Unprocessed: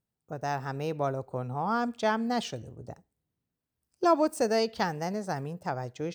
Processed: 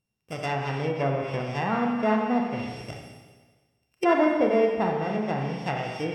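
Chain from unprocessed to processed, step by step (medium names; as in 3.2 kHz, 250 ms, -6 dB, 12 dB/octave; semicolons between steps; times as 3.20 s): sorted samples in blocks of 16 samples; Schroeder reverb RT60 1.4 s, combs from 29 ms, DRR 0.5 dB; low-pass that closes with the level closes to 1.4 kHz, closed at -24 dBFS; trim +2.5 dB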